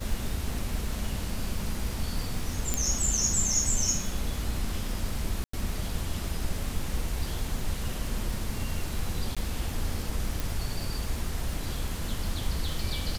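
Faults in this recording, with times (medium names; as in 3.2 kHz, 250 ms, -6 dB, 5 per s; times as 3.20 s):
crackle 230 per s -36 dBFS
2.74 s: pop
5.44–5.53 s: dropout 94 ms
9.35–9.37 s: dropout 16 ms
10.40 s: pop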